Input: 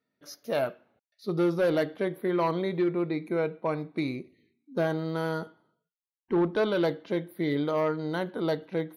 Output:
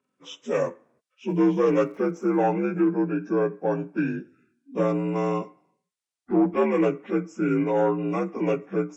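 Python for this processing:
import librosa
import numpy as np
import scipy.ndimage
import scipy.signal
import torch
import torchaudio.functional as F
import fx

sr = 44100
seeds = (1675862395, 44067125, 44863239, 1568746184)

y = fx.partial_stretch(x, sr, pct=83)
y = fx.dmg_crackle(y, sr, seeds[0], per_s=150.0, level_db=-56.0, at=(1.29, 2.5), fade=0.02)
y = y * 10.0 ** (5.5 / 20.0)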